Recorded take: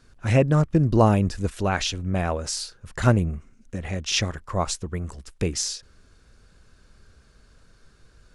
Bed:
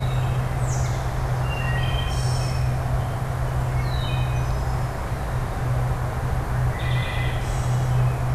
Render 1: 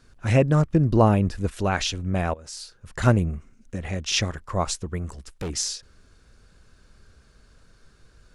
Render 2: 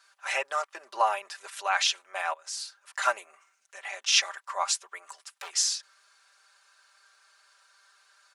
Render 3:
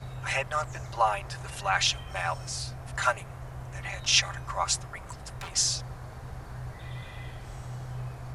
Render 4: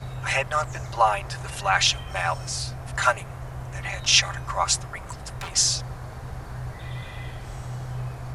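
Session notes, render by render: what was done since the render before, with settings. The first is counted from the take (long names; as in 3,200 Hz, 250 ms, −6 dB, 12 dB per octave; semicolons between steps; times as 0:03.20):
0:00.63–0:01.53: dynamic equaliser 6,900 Hz, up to −7 dB, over −49 dBFS, Q 0.84; 0:02.34–0:03.03: fade in linear, from −18.5 dB; 0:05.10–0:05.50: hard clipping −27 dBFS
inverse Chebyshev high-pass filter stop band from 180 Hz, stop band 70 dB; comb filter 5.1 ms, depth 75%
mix in bed −16.5 dB
level +5 dB; brickwall limiter −2 dBFS, peak gain reduction 1 dB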